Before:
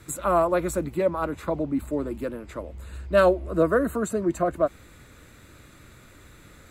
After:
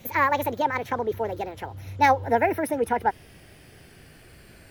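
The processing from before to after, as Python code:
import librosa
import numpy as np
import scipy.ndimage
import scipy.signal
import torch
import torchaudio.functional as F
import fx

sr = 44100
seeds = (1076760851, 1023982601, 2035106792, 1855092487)

y = fx.speed_glide(x, sr, from_pct=166, to_pct=119)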